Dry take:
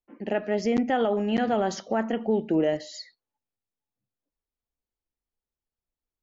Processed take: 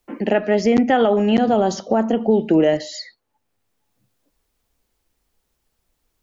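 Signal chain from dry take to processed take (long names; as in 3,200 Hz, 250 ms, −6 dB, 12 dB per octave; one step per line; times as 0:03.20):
0:01.37–0:02.40: parametric band 2,000 Hz −11.5 dB 1.1 octaves
multiband upward and downward compressor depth 40%
level +8.5 dB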